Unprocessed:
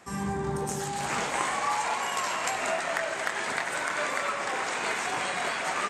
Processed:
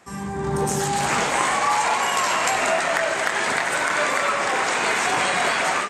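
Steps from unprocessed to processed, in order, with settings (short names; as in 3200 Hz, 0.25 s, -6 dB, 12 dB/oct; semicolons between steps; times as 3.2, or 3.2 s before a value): in parallel at 0 dB: limiter -24 dBFS, peak gain reduction 9.5 dB; on the sum: AGC gain up to 11.5 dB; gain -5.5 dB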